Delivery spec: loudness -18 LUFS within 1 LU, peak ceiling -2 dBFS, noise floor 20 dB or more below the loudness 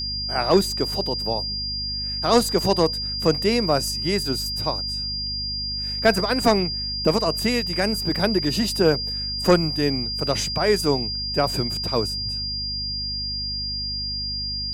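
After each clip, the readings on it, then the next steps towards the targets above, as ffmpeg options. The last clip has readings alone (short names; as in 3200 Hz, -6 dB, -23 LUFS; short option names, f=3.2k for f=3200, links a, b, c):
hum 50 Hz; harmonics up to 250 Hz; hum level -32 dBFS; steady tone 4800 Hz; tone level -26 dBFS; loudness -22.5 LUFS; peak -6.5 dBFS; loudness target -18.0 LUFS
-> -af "bandreject=f=50:t=h:w=4,bandreject=f=100:t=h:w=4,bandreject=f=150:t=h:w=4,bandreject=f=200:t=h:w=4,bandreject=f=250:t=h:w=4"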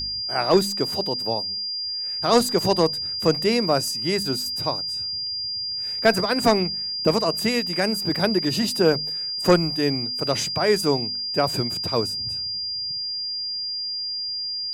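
hum none; steady tone 4800 Hz; tone level -26 dBFS
-> -af "bandreject=f=4.8k:w=30"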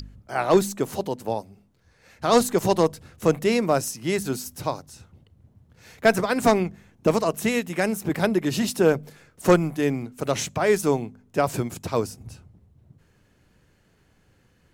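steady tone none; loudness -24.0 LUFS; peak -7.0 dBFS; loudness target -18.0 LUFS
-> -af "volume=6dB,alimiter=limit=-2dB:level=0:latency=1"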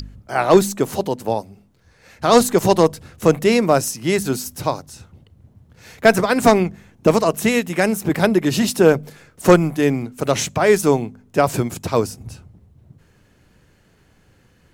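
loudness -18.0 LUFS; peak -2.0 dBFS; noise floor -56 dBFS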